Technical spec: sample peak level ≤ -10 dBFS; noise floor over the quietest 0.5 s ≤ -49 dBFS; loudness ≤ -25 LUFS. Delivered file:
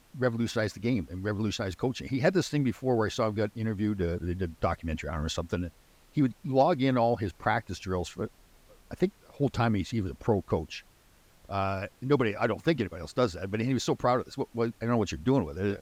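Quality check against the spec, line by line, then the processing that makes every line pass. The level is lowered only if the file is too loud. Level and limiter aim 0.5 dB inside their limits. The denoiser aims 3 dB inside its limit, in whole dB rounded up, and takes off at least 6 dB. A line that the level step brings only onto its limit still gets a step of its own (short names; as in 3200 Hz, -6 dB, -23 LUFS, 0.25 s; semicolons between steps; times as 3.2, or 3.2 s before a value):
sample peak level -11.5 dBFS: OK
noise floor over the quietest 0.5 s -60 dBFS: OK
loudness -30.0 LUFS: OK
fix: none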